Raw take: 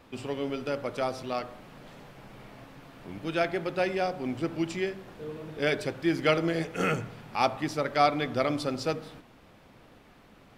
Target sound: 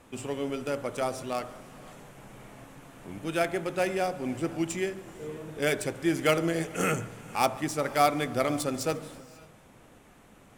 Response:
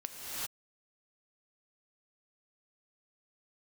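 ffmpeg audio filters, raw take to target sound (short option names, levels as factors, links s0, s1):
-filter_complex "[0:a]adynamicsmooth=sensitivity=5:basefreq=6900,aexciter=amount=7.1:drive=7:freq=6700,asplit=2[s0][s1];[1:a]atrim=start_sample=2205,adelay=142[s2];[s1][s2]afir=irnorm=-1:irlink=0,volume=0.0944[s3];[s0][s3]amix=inputs=2:normalize=0"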